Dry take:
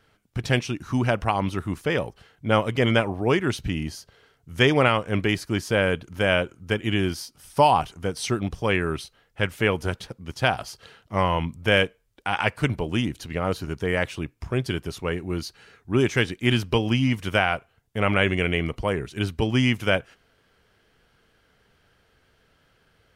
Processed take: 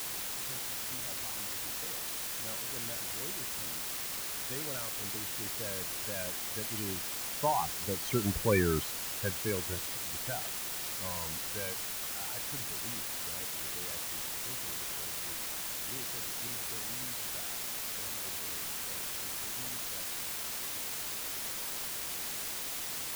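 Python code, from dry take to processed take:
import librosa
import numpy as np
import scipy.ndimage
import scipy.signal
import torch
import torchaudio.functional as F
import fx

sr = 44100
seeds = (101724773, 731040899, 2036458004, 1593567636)

y = fx.doppler_pass(x, sr, speed_mps=7, closest_m=2.5, pass_at_s=8.57)
y = fx.spec_topn(y, sr, count=16)
y = fx.quant_dither(y, sr, seeds[0], bits=6, dither='triangular')
y = F.gain(torch.from_numpy(y), -2.0).numpy()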